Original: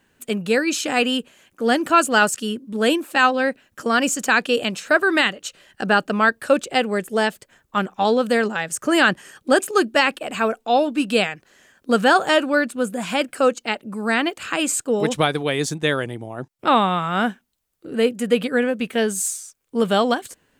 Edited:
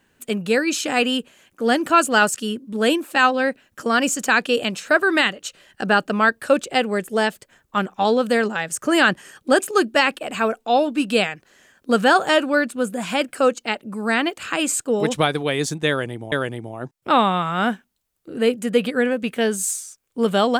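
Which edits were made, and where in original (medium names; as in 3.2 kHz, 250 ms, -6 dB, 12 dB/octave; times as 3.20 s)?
15.89–16.32 s: loop, 2 plays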